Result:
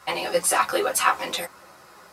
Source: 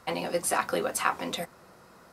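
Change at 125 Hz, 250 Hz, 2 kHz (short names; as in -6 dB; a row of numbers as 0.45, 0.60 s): -3.5, 0.0, +6.5 dB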